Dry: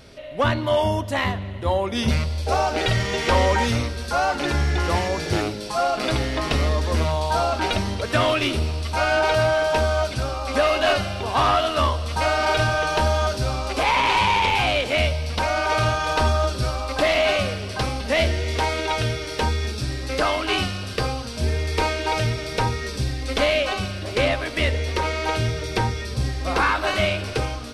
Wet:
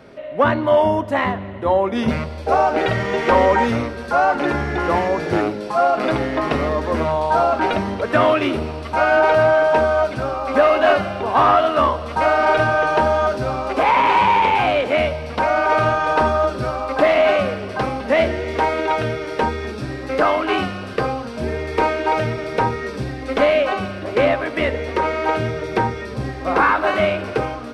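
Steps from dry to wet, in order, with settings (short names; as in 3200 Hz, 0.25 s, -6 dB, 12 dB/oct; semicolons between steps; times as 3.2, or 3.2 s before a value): three-band isolator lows -15 dB, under 150 Hz, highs -16 dB, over 2100 Hz; gain +6 dB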